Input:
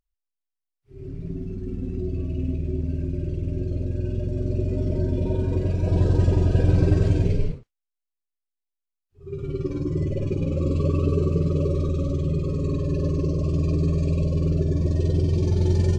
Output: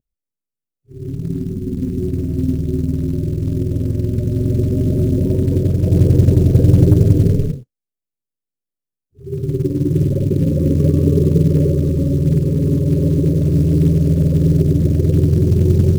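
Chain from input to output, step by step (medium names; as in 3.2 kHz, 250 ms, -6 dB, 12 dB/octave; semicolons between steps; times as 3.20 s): ten-band graphic EQ 125 Hz +12 dB, 250 Hz +9 dB, 500 Hz +8 dB, 1 kHz -11 dB, 2 kHz -11 dB, 4 kHz -7 dB; short-mantissa float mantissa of 4-bit; trim -1 dB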